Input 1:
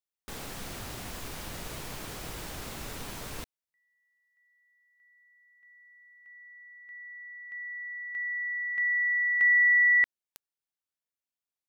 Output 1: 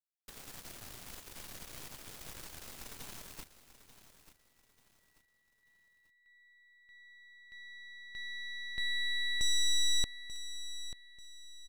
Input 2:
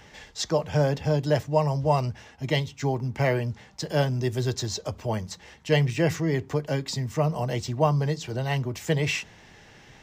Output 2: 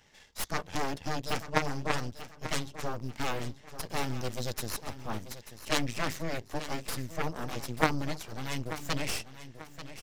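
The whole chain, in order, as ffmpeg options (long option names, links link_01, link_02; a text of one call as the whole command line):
ffmpeg -i in.wav -af "aeval=exprs='if(lt(val(0),0),0.708*val(0),val(0))':channel_layout=same,highshelf=frequency=2600:gain=7,aeval=exprs='0.398*(cos(1*acos(clip(val(0)/0.398,-1,1)))-cos(1*PI/2))+0.158*(cos(3*acos(clip(val(0)/0.398,-1,1)))-cos(3*PI/2))+0.0355*(cos(8*acos(clip(val(0)/0.398,-1,1)))-cos(8*PI/2))':channel_layout=same,aecho=1:1:888|1776|2664:0.224|0.0761|0.0259" out.wav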